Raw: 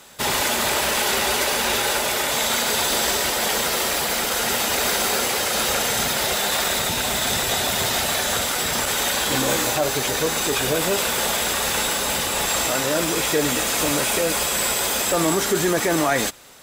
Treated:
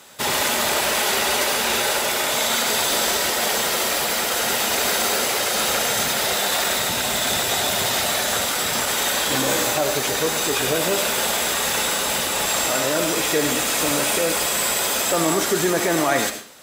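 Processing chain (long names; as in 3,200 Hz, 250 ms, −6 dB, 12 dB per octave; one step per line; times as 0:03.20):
high-pass filter 110 Hz 6 dB per octave
convolution reverb RT60 0.40 s, pre-delay 40 ms, DRR 7.5 dB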